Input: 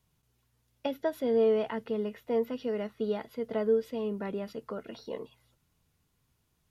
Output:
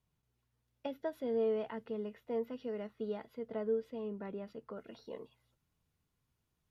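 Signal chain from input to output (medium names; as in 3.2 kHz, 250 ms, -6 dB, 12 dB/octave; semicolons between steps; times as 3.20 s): treble shelf 4 kHz -7 dB, from 3.39 s -12 dB, from 4.77 s -4 dB; trim -7.5 dB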